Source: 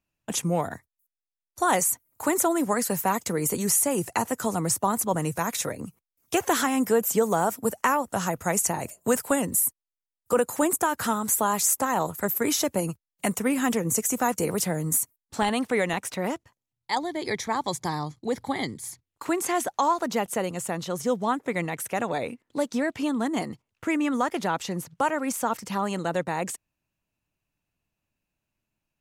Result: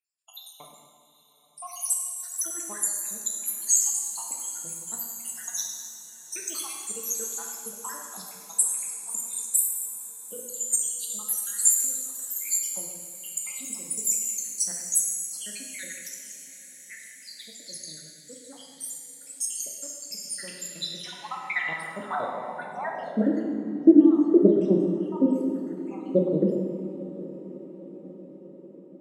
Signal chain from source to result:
time-frequency cells dropped at random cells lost 83%
high-shelf EQ 9,700 Hz +7 dB
0:19.72–0:20.85: leveller curve on the samples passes 1
in parallel at −9.5 dB: soft clipping −17 dBFS, distortion −19 dB
on the sum: parametric band 200 Hz +12 dB 1.6 octaves
on a send: feedback delay with all-pass diffusion 835 ms, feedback 57%, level −15.5 dB
on the sum: dense smooth reverb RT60 1.9 s, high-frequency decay 0.85×, DRR −1 dB
band-pass filter sweep 7,300 Hz → 370 Hz, 0:20.16–0:23.76
level +6.5 dB

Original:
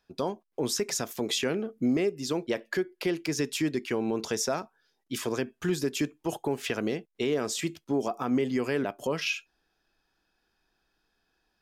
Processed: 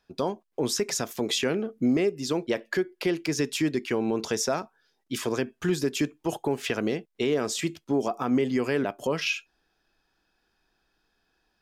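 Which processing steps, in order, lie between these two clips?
high-shelf EQ 10,000 Hz −4 dB
level +2.5 dB

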